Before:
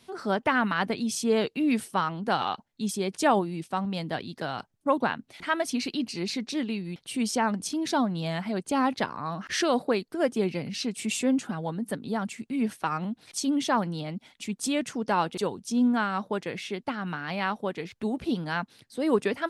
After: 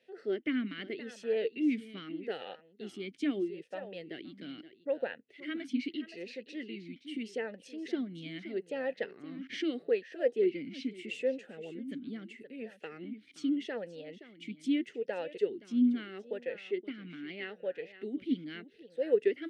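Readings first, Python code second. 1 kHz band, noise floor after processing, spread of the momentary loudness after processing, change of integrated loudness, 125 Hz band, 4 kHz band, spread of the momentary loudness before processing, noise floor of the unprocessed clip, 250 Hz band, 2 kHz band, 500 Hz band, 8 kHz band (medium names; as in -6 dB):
-23.5 dB, -63 dBFS, 14 LU, -7.5 dB, -16.5 dB, -11.0 dB, 8 LU, -65 dBFS, -7.0 dB, -11.0 dB, -4.0 dB, under -20 dB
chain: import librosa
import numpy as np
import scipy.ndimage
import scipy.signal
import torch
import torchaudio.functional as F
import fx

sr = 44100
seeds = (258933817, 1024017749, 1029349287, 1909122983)

y = x + 10.0 ** (-14.0 / 20.0) * np.pad(x, (int(522 * sr / 1000.0), 0))[:len(x)]
y = fx.vowel_sweep(y, sr, vowels='e-i', hz=0.79)
y = y * librosa.db_to_amplitude(2.5)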